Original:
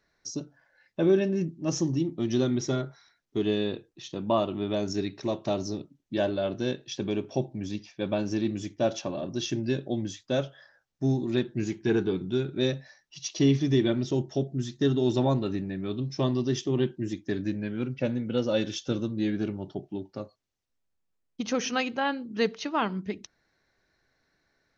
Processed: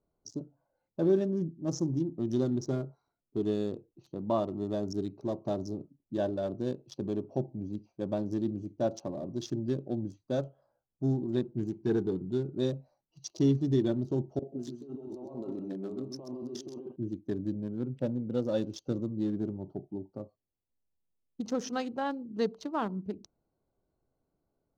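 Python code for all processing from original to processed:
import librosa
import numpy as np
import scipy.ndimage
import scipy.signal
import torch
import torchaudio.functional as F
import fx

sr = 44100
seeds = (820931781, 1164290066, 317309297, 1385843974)

y = fx.chain(x, sr, fx.highpass(hz=350.0, slope=12),
    fx.over_compress(threshold_db=-37.0, ratio=-1.0),
    fx.echo_single(ms=130, db=-5.0), at=(14.39, 16.96))
y = fx.wiener(y, sr, points=25)
y = fx.peak_eq(y, sr, hz=2400.0, db=-12.5, octaves=1.1)
y = y * librosa.db_to_amplitude(-3.0)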